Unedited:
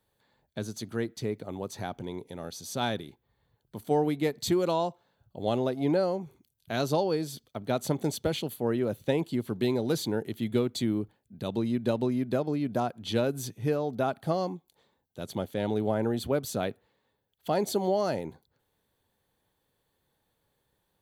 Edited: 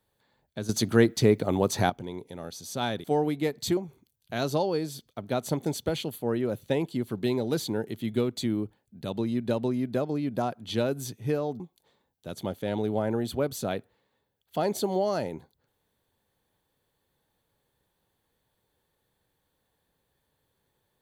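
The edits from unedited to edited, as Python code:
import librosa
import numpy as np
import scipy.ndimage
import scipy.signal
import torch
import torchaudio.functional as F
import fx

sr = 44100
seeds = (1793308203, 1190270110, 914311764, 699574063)

y = fx.edit(x, sr, fx.clip_gain(start_s=0.69, length_s=1.21, db=11.5),
    fx.cut(start_s=3.04, length_s=0.8),
    fx.cut(start_s=4.57, length_s=1.58),
    fx.cut(start_s=13.98, length_s=0.54), tone=tone)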